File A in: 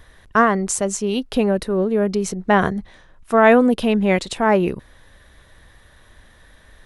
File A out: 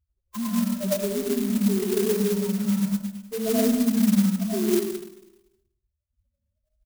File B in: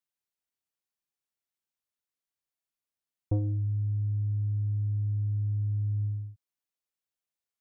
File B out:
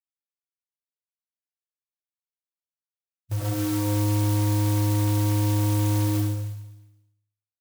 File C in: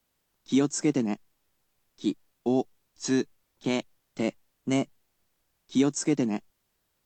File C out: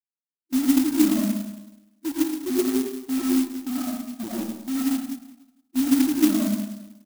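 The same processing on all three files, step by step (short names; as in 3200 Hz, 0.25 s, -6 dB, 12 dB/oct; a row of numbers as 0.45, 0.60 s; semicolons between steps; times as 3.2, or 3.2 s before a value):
notch 1900 Hz, Q 6.4; low-pass opened by the level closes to 800 Hz, open at -16.5 dBFS; LPF 4000 Hz 12 dB/oct; gate -46 dBFS, range -25 dB; treble ducked by the level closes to 410 Hz, closed at -16.5 dBFS; HPF 170 Hz 6 dB/oct; loudest bins only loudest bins 1; in parallel at -5.5 dB: requantised 6-bit, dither none; on the sum: feedback echo 0.106 s, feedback 35%, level -18 dB; digital reverb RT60 0.94 s, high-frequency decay 0.65×, pre-delay 55 ms, DRR -7 dB; clock jitter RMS 0.12 ms; match loudness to -24 LUFS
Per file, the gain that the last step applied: -5.0, +6.0, +3.0 dB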